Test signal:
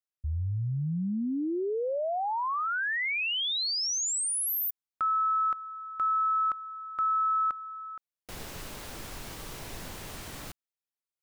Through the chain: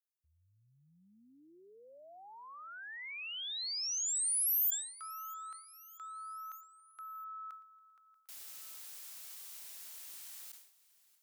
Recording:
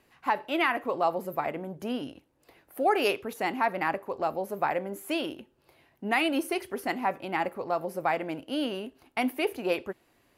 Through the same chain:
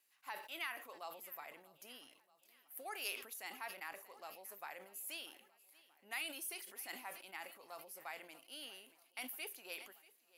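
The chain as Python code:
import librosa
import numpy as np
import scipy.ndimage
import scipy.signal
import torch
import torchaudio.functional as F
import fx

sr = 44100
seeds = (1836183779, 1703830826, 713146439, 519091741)

y = np.diff(x, prepend=0.0)
y = fx.echo_feedback(y, sr, ms=635, feedback_pct=57, wet_db=-21)
y = fx.sustainer(y, sr, db_per_s=87.0)
y = F.gain(torch.from_numpy(y), -4.5).numpy()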